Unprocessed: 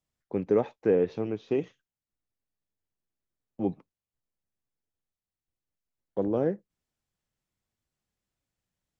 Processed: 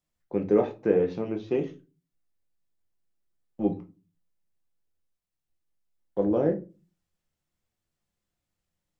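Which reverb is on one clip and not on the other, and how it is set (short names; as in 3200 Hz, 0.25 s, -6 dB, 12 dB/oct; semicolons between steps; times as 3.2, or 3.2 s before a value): shoebox room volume 120 m³, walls furnished, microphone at 0.85 m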